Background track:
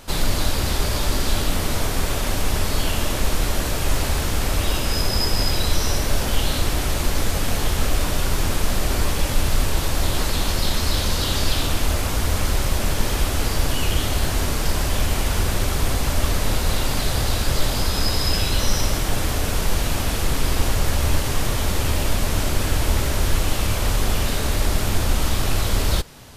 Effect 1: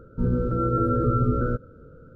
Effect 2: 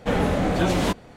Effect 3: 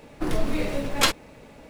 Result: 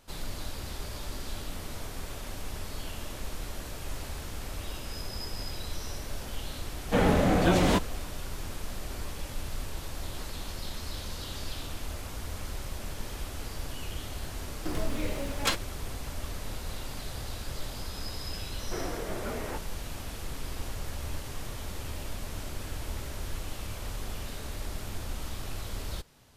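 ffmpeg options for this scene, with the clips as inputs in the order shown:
-filter_complex "[2:a]asplit=2[s0][s1];[0:a]volume=0.15[s2];[s1]highpass=f=360:t=q:w=0.5412,highpass=f=360:t=q:w=1.307,lowpass=f=2500:t=q:w=0.5176,lowpass=f=2500:t=q:w=0.7071,lowpass=f=2500:t=q:w=1.932,afreqshift=-120[s3];[s0]atrim=end=1.16,asetpts=PTS-STARTPTS,volume=0.841,afade=t=in:d=0.004:c=hsin,afade=t=out:st=1.156:d=0.004:c=hsin,adelay=6860[s4];[3:a]atrim=end=1.69,asetpts=PTS-STARTPTS,volume=0.422,afade=t=in:d=0.004:c=hsin,afade=t=out:st=1.686:d=0.004:c=hsin,adelay=636804S[s5];[s3]atrim=end=1.16,asetpts=PTS-STARTPTS,volume=0.266,afade=t=in:d=0.004:c=hsin,afade=t=out:st=1.156:d=0.004:c=hsin,adelay=18650[s6];[s2][s4][s5][s6]amix=inputs=4:normalize=0"

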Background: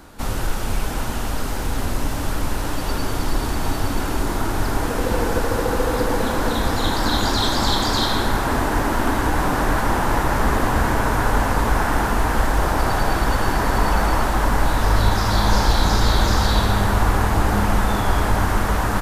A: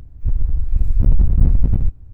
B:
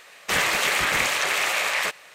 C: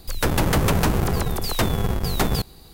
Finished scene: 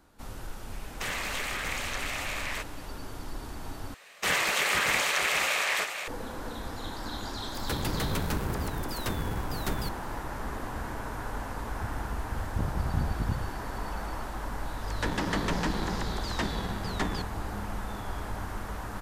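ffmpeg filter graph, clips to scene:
-filter_complex "[2:a]asplit=2[s0][s1];[3:a]asplit=2[s2][s3];[0:a]volume=0.141[s4];[s0]acompressor=threshold=0.00794:ratio=1.5:attack=72:release=21:knee=1:detection=peak[s5];[s1]aecho=1:1:473:0.422[s6];[s2]equalizer=f=740:t=o:w=0.77:g=-5[s7];[1:a]highpass=80[s8];[s3]highpass=f=160:w=0.5412,highpass=f=160:w=1.3066,equalizer=f=180:t=q:w=4:g=5,equalizer=f=290:t=q:w=4:g=6,equalizer=f=980:t=q:w=4:g=4,equalizer=f=1800:t=q:w=4:g=9,equalizer=f=3200:t=q:w=4:g=4,lowpass=f=7900:w=0.5412,lowpass=f=7900:w=1.3066[s9];[s4]asplit=2[s10][s11];[s10]atrim=end=3.944[s12];[s6]atrim=end=2.14,asetpts=PTS-STARTPTS,volume=0.596[s13];[s11]atrim=start=6.076[s14];[s5]atrim=end=2.14,asetpts=PTS-STARTPTS,volume=0.447,afade=t=in:d=0.004:c=hsin,afade=t=out:st=2.136:d=0.004:c=hsin,adelay=720[s15];[s7]atrim=end=2.73,asetpts=PTS-STARTPTS,volume=0.282,afade=t=in:d=0.004:c=hsin,afade=t=out:st=2.726:d=0.004:c=hsin,adelay=7470[s16];[s8]atrim=end=2.13,asetpts=PTS-STARTPTS,volume=0.335,afade=t=in:d=0.004:c=hsin,afade=t=out:st=2.126:d=0.004:c=hsin,adelay=11560[s17];[s9]atrim=end=2.73,asetpts=PTS-STARTPTS,volume=0.266,afade=t=in:d=0.004:c=hsin,afade=t=out:st=2.726:d=0.004:c=hsin,adelay=14800[s18];[s12][s13]acrossfade=d=0.004:c1=hsin:c2=hsin[s19];[s19][s14]acrossfade=d=0.004:c1=hsin:c2=hsin[s20];[s20][s15][s16][s17][s18]amix=inputs=5:normalize=0"

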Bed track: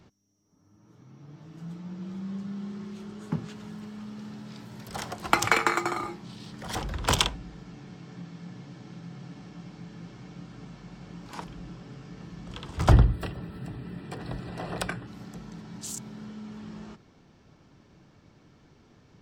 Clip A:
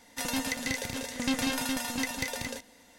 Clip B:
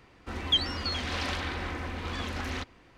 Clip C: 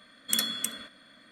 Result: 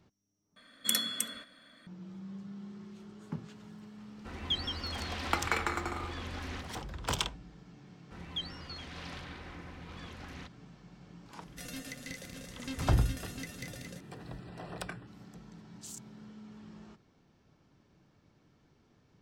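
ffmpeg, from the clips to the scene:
-filter_complex "[2:a]asplit=2[s0][s1];[0:a]volume=0.355[s2];[s0]aecho=1:1:170:0.473[s3];[1:a]asuperstop=centerf=900:order=4:qfactor=2.3[s4];[s2]asplit=2[s5][s6];[s5]atrim=end=0.564[s7];[3:a]atrim=end=1.31,asetpts=PTS-STARTPTS,volume=0.75[s8];[s6]atrim=start=1.866[s9];[s3]atrim=end=2.97,asetpts=PTS-STARTPTS,volume=0.398,afade=t=in:d=0.004:c=hsin,afade=t=out:st=2.966:d=0.004:c=hsin,adelay=3980[s10];[s1]atrim=end=2.97,asetpts=PTS-STARTPTS,volume=0.224,afade=t=in:d=0.004:c=hsin,afade=t=out:st=2.966:d=0.004:c=hsin,adelay=7840[s11];[s4]atrim=end=2.98,asetpts=PTS-STARTPTS,volume=0.251,afade=t=in:d=0.004:c=hsin,afade=t=out:st=2.976:d=0.004:c=hsin,adelay=11400[s12];[s7][s8]acrossfade=d=0.004:c1=hsin:c2=hsin[s13];[s13][s9]acrossfade=d=0.004:c1=hsin:c2=hsin[s14];[s14][s10][s11][s12]amix=inputs=4:normalize=0"

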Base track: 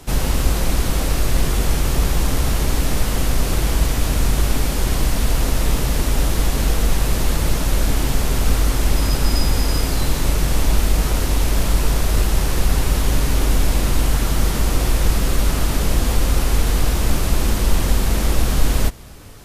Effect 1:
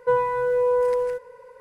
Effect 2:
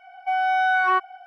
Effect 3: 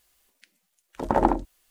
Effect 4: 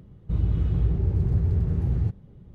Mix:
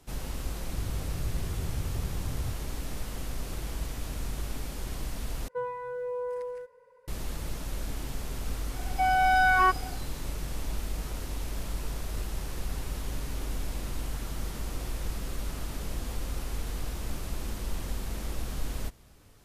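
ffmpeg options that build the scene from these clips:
-filter_complex "[0:a]volume=0.141,asplit=2[s0][s1];[s0]atrim=end=5.484[s2];[1:a]atrim=end=1.6,asetpts=PTS-STARTPTS,volume=0.224[s3];[s1]atrim=start=7.076[s4];[4:a]atrim=end=2.54,asetpts=PTS-STARTPTS,volume=0.237,afade=t=in:d=0.004:c=hsin,afade=t=out:st=2.536:d=0.004:c=hsin,adelay=430[s5];[2:a]atrim=end=1.26,asetpts=PTS-STARTPTS,volume=0.794,afade=t=in:d=0.004:c=hsin,afade=t=out:st=1.256:d=0.004:c=hsin,adelay=8720[s6];[s2][s3]acrossfade=d=0.004:c1=hsin:c2=hsin[s7];[s7][s4]acrossfade=d=0.004:c1=hsin:c2=hsin[s8];[s8][s5][s6]amix=inputs=3:normalize=0"

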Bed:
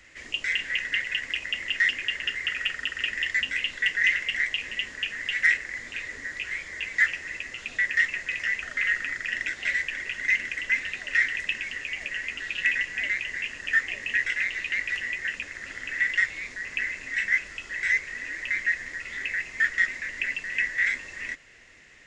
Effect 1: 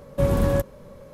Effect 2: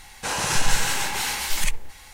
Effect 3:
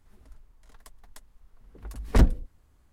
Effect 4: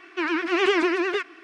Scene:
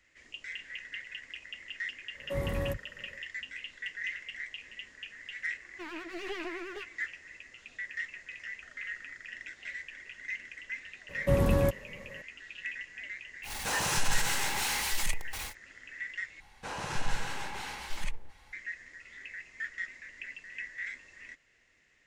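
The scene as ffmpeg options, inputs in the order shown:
-filter_complex "[1:a]asplit=2[s0][s1];[2:a]asplit=2[s2][s3];[0:a]volume=0.188[s4];[s0]acrossover=split=210[s5][s6];[s5]adelay=30[s7];[s7][s6]amix=inputs=2:normalize=0[s8];[4:a]aeval=exprs='clip(val(0),-1,0.0422)':c=same[s9];[s2]aeval=exprs='val(0)+0.5*0.0596*sgn(val(0))':c=same[s10];[s3]aemphasis=mode=reproduction:type=75kf[s11];[s4]asplit=2[s12][s13];[s12]atrim=end=16.404[s14];[s11]atrim=end=2.13,asetpts=PTS-STARTPTS,volume=0.335[s15];[s13]atrim=start=18.526[s16];[s8]atrim=end=1.13,asetpts=PTS-STARTPTS,volume=0.266,afade=t=in:d=0.1,afade=t=out:st=1.03:d=0.1,adelay=2120[s17];[s9]atrim=end=1.43,asetpts=PTS-STARTPTS,volume=0.178,afade=t=in:d=0.004:c=hsin,afade=t=out:st=1.426:d=0.004:c=hsin,adelay=5620[s18];[s1]atrim=end=1.13,asetpts=PTS-STARTPTS,volume=0.596,afade=t=in:d=0.004:c=hsin,afade=t=out:st=1.126:d=0.004:c=hsin,adelay=11090[s19];[s10]atrim=end=2.13,asetpts=PTS-STARTPTS,volume=0.355,afade=t=in:d=0.1,afade=t=out:st=2.03:d=0.1,adelay=13420[s20];[s14][s15]acrossfade=d=0.004:c1=hsin:c2=hsin[s21];[s21][s16]acrossfade=d=0.004:c1=hsin:c2=hsin[s22];[s22][s17][s18][s19][s20]amix=inputs=5:normalize=0"

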